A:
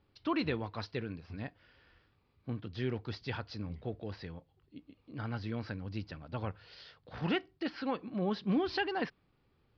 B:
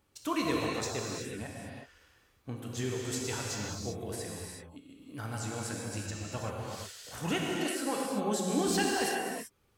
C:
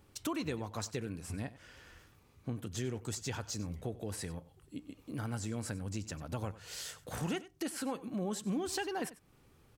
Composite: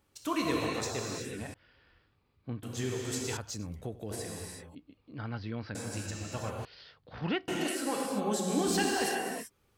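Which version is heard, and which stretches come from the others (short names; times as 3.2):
B
1.54–2.63 from A
3.37–4.11 from C
4.75–5.75 from A
6.65–7.48 from A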